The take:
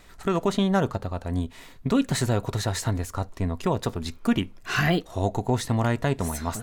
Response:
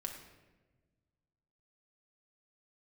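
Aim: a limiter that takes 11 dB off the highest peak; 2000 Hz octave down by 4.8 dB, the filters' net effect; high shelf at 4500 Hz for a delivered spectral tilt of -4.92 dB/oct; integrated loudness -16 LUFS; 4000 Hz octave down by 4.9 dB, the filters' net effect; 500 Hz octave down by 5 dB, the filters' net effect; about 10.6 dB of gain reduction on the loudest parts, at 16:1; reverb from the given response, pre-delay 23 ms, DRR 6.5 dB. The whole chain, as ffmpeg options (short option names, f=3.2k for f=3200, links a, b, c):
-filter_complex "[0:a]equalizer=f=500:t=o:g=-6.5,equalizer=f=2k:t=o:g=-5.5,equalizer=f=4k:t=o:g=-7,highshelf=f=4.5k:g=5.5,acompressor=threshold=-29dB:ratio=16,alimiter=level_in=5.5dB:limit=-24dB:level=0:latency=1,volume=-5.5dB,asplit=2[a][b];[1:a]atrim=start_sample=2205,adelay=23[c];[b][c]afir=irnorm=-1:irlink=0,volume=-5.5dB[d];[a][d]amix=inputs=2:normalize=0,volume=23.5dB"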